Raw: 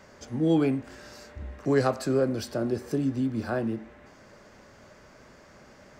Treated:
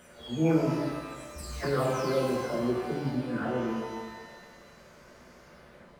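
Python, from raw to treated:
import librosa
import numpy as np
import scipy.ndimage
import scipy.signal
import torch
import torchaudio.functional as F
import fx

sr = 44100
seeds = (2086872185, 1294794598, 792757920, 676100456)

y = fx.spec_delay(x, sr, highs='early', ms=626)
y = fx.rev_shimmer(y, sr, seeds[0], rt60_s=1.3, semitones=12, shimmer_db=-8, drr_db=-1.0)
y = y * librosa.db_to_amplitude(-3.0)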